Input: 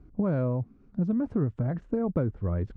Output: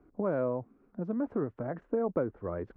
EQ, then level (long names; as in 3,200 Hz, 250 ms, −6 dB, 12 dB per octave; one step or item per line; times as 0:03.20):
three-way crossover with the lows and the highs turned down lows −18 dB, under 290 Hz, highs −16 dB, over 2,200 Hz
+2.0 dB